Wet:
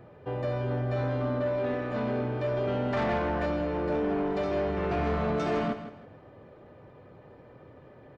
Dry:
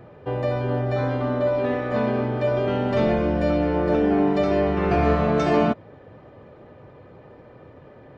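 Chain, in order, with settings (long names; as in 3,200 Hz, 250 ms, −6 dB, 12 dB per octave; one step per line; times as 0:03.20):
0:02.93–0:03.46: flat-topped bell 1,200 Hz +9 dB
soft clipping −18 dBFS, distortion −13 dB
repeating echo 161 ms, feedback 30%, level −11.5 dB
level −5.5 dB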